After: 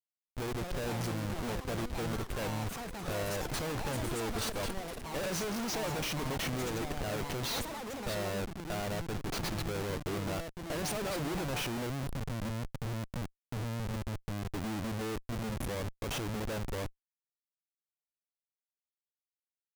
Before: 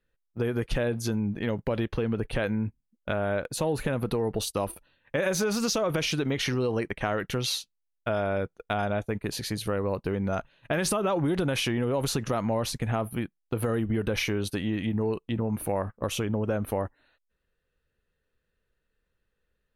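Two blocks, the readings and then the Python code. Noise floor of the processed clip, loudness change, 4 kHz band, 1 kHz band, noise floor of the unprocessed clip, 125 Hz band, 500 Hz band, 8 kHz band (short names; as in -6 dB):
under -85 dBFS, -7.5 dB, -6.0 dB, -5.5 dB, -79 dBFS, -6.0 dB, -9.5 dB, -5.5 dB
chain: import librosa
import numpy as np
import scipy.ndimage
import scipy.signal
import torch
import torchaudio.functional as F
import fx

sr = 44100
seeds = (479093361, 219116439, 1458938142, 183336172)

y = fx.spec_erase(x, sr, start_s=11.9, length_s=2.58, low_hz=310.0, high_hz=10000.0)
y = fx.dynamic_eq(y, sr, hz=5800.0, q=3.7, threshold_db=-51.0, ratio=4.0, max_db=4)
y = fx.schmitt(y, sr, flips_db=-32.0)
y = fx.echo_pitch(y, sr, ms=363, semitones=7, count=3, db_per_echo=-6.0)
y = F.gain(torch.from_numpy(y), -5.5).numpy()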